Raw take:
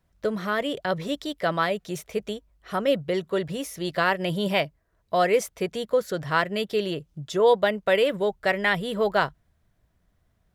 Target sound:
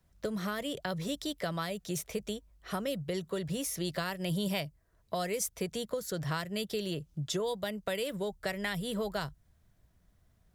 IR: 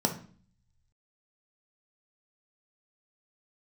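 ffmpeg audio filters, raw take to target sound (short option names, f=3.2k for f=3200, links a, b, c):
-filter_complex "[0:a]bass=f=250:g=3,treble=f=4k:g=5,acrossover=split=150|4700[a][b][c];[b]acompressor=threshold=-31dB:ratio=6[d];[a][d][c]amix=inputs=3:normalize=0,volume=-2dB"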